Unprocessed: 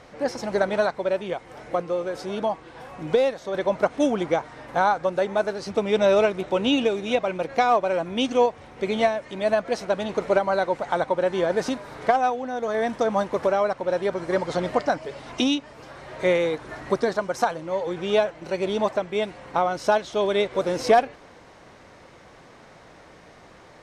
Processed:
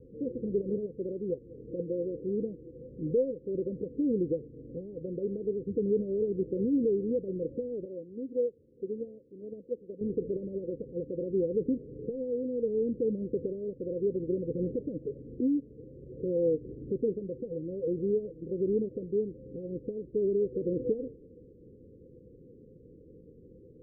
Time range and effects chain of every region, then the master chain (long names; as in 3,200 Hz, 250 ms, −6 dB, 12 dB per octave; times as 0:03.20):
0:07.85–0:10.01: spectral tilt +3 dB per octave + expander for the loud parts, over −32 dBFS
whole clip: brickwall limiter −17.5 dBFS; Chebyshev low-pass filter 510 Hz, order 8